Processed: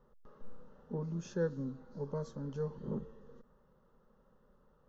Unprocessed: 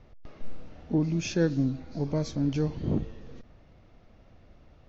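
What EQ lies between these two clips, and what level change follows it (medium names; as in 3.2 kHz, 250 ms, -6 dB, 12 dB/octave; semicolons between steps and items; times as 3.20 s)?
bass shelf 230 Hz -10.5 dB; peaking EQ 4.9 kHz -15 dB 1.6 oct; static phaser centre 460 Hz, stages 8; -2.0 dB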